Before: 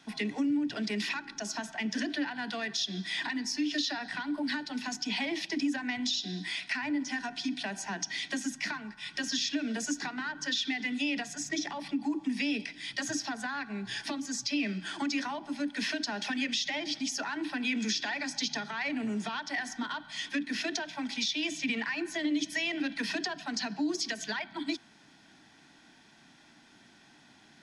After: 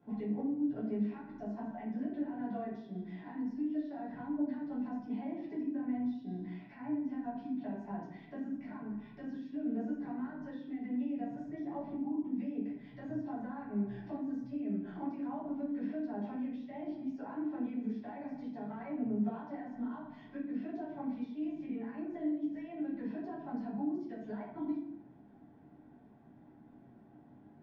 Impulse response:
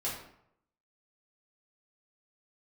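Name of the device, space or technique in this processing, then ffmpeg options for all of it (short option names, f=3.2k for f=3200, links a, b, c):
television next door: -filter_complex "[0:a]acompressor=threshold=-36dB:ratio=6,lowpass=560[a];[1:a]atrim=start_sample=2205[b];[a][b]afir=irnorm=-1:irlink=0"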